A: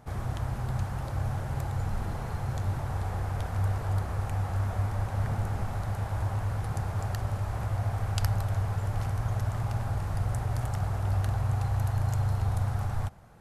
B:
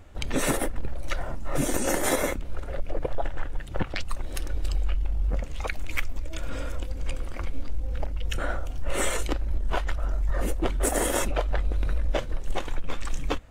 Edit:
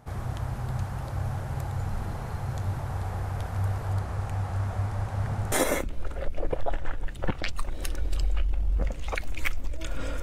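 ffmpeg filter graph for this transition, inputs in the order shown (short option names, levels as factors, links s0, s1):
-filter_complex "[0:a]asettb=1/sr,asplit=3[s0][s1][s2];[s0]atrim=end=3.944[s3];[s1]atrim=start=3.94:end=5.52,asetpts=PTS-STARTPTS,afade=t=in:d=0.004:c=qsin,afade=t=out:st=1.576:d=0.004:c=qsin,lowpass=11000[s4];[s2]atrim=start=5.516[s5];[s3][s4]acrossfade=d=0.004:c1=hsin:c2=qsin[s6];[s6][s5]acrossfade=d=0.004:c1=qsin:c2=hsin,apad=whole_dur=10.22,atrim=end=10.22,atrim=end=5.522[s7];[1:a]atrim=start=2.038:end=6.74[s8];[s7][s8]acrossfade=d=0.004:c1=hsin:c2=hsin"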